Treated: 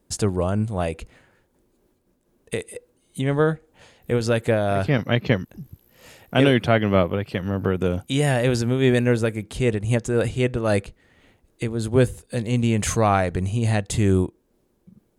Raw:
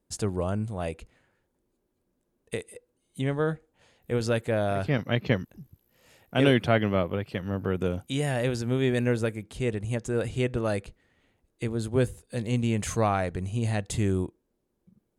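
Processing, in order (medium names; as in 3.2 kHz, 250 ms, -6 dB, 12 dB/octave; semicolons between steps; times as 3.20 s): in parallel at -1 dB: compression, threshold -41 dBFS, peak gain reduction 23 dB; on the sum: random flutter of the level, depth 60%; trim +8 dB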